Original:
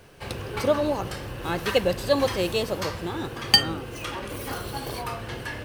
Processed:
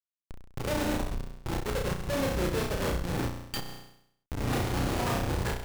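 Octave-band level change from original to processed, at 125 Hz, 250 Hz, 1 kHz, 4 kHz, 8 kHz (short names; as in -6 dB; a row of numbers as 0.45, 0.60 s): +1.5, -2.0, -4.5, -13.0, -3.5 dB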